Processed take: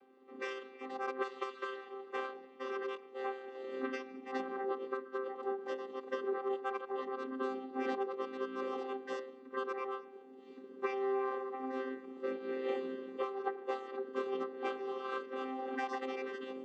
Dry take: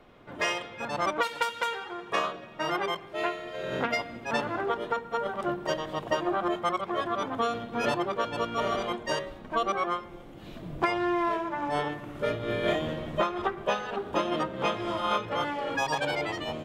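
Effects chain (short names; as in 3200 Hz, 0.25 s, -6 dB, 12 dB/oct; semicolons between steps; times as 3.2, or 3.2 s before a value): chord vocoder bare fifth, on C4; gain -8 dB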